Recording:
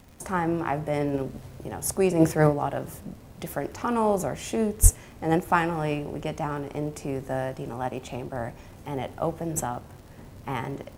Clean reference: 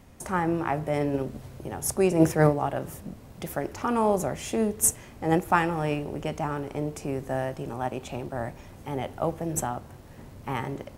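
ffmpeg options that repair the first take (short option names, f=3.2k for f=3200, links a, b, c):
-filter_complex "[0:a]adeclick=t=4,asplit=3[a][b][c];[a]afade=t=out:st=4.82:d=0.02[d];[b]highpass=f=140:w=0.5412,highpass=f=140:w=1.3066,afade=t=in:st=4.82:d=0.02,afade=t=out:st=4.94:d=0.02[e];[c]afade=t=in:st=4.94:d=0.02[f];[d][e][f]amix=inputs=3:normalize=0"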